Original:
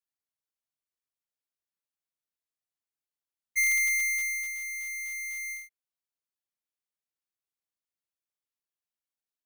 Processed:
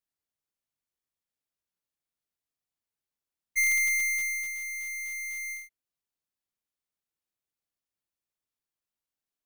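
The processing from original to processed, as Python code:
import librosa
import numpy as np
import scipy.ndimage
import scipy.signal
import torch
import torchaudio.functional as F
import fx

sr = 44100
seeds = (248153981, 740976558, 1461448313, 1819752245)

y = fx.low_shelf(x, sr, hz=400.0, db=6.0)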